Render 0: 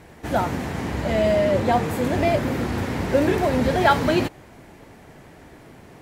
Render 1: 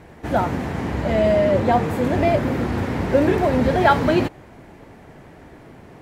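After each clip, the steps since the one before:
high-shelf EQ 3,300 Hz −8.5 dB
level +2.5 dB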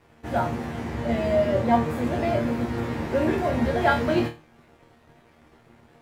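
dead-zone distortion −45 dBFS
resonators tuned to a chord D#2 fifth, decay 0.28 s
level +5.5 dB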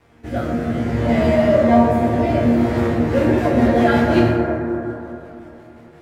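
rotating-speaker cabinet horn 0.6 Hz, later 5.5 Hz, at 0:02.60
dense smooth reverb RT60 3.3 s, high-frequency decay 0.25×, DRR −1.5 dB
level +5.5 dB

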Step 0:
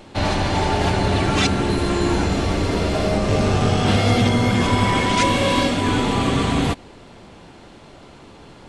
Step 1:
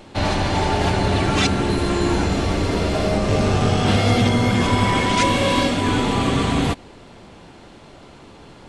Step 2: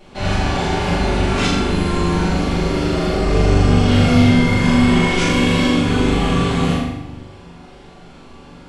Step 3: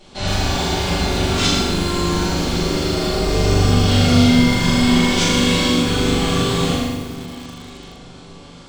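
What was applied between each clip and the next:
no processing that can be heard
flutter between parallel walls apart 7 metres, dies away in 0.74 s; convolution reverb RT60 0.75 s, pre-delay 5 ms, DRR −5 dB; level −7.5 dB
flat-topped bell 5,400 Hz +8.5 dB; delay that swaps between a low-pass and a high-pass 558 ms, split 900 Hz, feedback 57%, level −13.5 dB; feedback echo at a low word length 114 ms, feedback 35%, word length 5 bits, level −7 dB; level −2.5 dB

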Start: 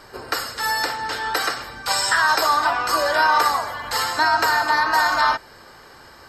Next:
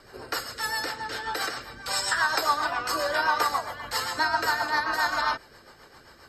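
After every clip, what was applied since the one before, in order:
rotating-speaker cabinet horn 7.5 Hz
level −3.5 dB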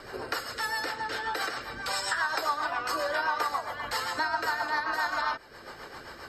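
bass and treble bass −4 dB, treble −5 dB
downward compressor 2 to 1, threshold −45 dBFS, peak gain reduction 14.5 dB
level +8.5 dB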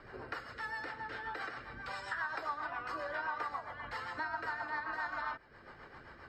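drawn EQ curve 140 Hz 0 dB, 480 Hz −7 dB, 2,000 Hz −4 dB, 12,000 Hz −27 dB
level −4 dB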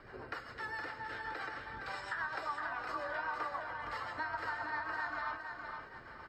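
repeating echo 465 ms, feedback 33%, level −6 dB
level −1 dB

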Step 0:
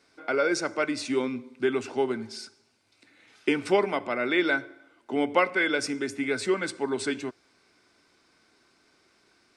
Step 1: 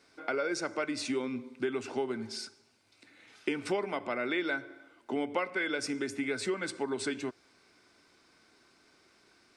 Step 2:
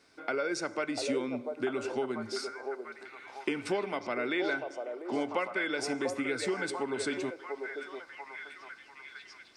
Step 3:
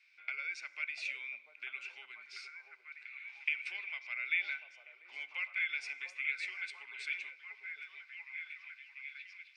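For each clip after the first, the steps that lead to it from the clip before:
downward compressor 3 to 1, threshold −31 dBFS, peak gain reduction 11 dB
echo through a band-pass that steps 693 ms, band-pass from 570 Hz, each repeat 0.7 octaves, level −1.5 dB
four-pole ladder band-pass 2,500 Hz, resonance 80%; level +5 dB

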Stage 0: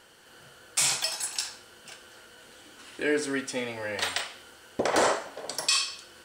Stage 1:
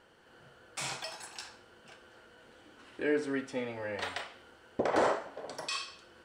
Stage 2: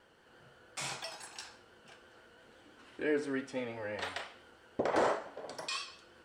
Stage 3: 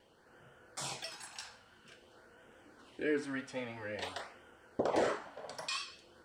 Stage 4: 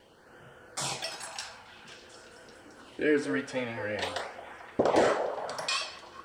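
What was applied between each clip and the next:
low-pass filter 1,400 Hz 6 dB per octave; level −2.5 dB
pitch vibrato 5.9 Hz 46 cents; level −2 dB
auto-filter notch sine 0.5 Hz 330–4,300 Hz
echo through a band-pass that steps 220 ms, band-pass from 620 Hz, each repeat 0.7 octaves, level −7 dB; level +7.5 dB

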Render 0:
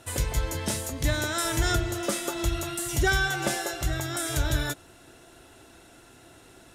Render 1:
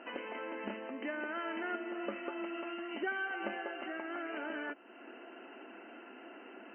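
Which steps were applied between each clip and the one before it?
brick-wall band-pass 200–3,100 Hz
downward compressor 2 to 1, threshold −49 dBFS, peak gain reduction 15.5 dB
level +3 dB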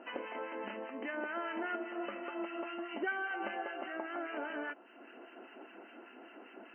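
two-band tremolo in antiphase 5 Hz, depth 70%, crossover 1,200 Hz
dynamic equaliser 830 Hz, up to +5 dB, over −55 dBFS, Q 0.81
level +1 dB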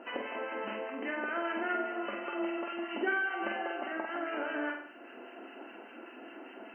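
flutter between parallel walls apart 8.1 metres, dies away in 0.59 s
level +3 dB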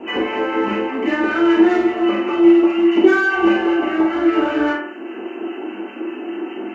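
in parallel at −6.5 dB: hard clipping −34 dBFS, distortion −10 dB
on the sum: convolution reverb, pre-delay 3 ms, DRR −7.5 dB
level −1.5 dB

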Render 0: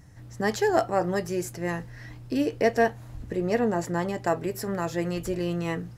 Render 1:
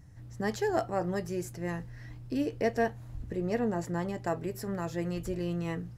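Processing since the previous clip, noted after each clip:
low-shelf EQ 200 Hz +7.5 dB
level −7.5 dB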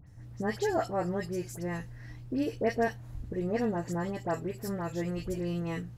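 all-pass dispersion highs, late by 72 ms, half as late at 2,100 Hz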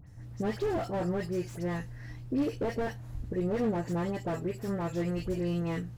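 slew-rate limiting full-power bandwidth 16 Hz
level +2 dB

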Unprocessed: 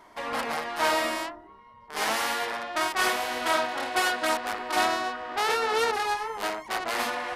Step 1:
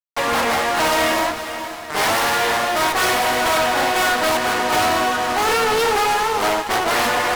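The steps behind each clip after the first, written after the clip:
fuzz pedal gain 37 dB, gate −42 dBFS
feedback delay with all-pass diffusion 481 ms, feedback 46%, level −10.5 dB
level −3 dB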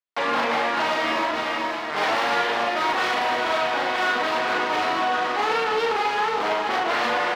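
three-way crossover with the lows and the highs turned down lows −17 dB, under 160 Hz, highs −22 dB, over 4,800 Hz
brickwall limiter −19.5 dBFS, peak gain reduction 11 dB
double-tracking delay 39 ms −3.5 dB
level +2.5 dB

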